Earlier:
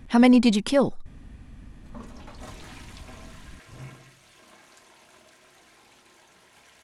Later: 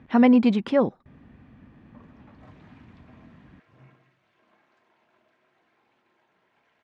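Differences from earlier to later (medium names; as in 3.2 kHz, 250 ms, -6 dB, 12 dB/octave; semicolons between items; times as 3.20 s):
background -10.0 dB; master: add band-pass 120–2200 Hz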